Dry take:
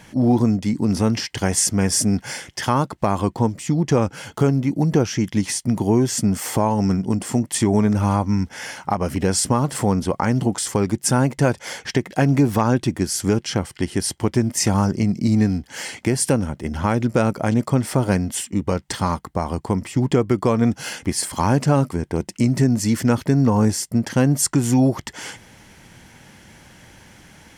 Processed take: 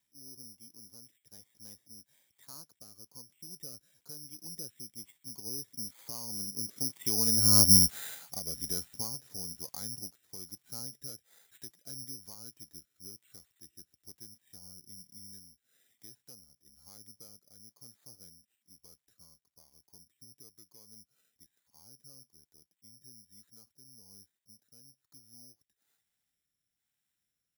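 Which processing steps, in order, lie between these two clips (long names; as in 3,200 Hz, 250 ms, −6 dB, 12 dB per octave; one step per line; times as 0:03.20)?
spike at every zero crossing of −23.5 dBFS
source passing by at 0:07.65, 25 m/s, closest 3.9 metres
rotating-speaker cabinet horn 1.1 Hz
bad sample-rate conversion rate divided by 8×, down filtered, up zero stuff
level −7.5 dB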